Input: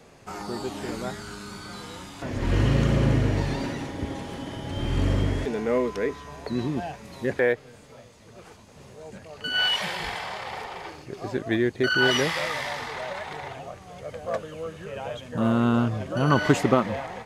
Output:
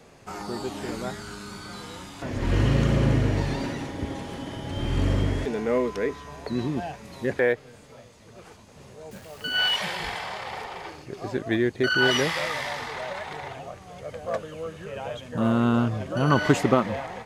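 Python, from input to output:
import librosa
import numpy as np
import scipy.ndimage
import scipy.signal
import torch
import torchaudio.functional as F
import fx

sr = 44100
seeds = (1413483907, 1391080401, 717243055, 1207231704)

y = fx.quant_dither(x, sr, seeds[0], bits=8, dither='none', at=(9.11, 9.76))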